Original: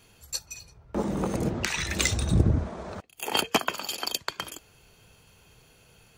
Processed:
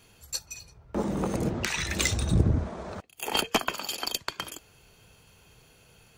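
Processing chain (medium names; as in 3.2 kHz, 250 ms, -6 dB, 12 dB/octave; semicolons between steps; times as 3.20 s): single-diode clipper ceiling -12 dBFS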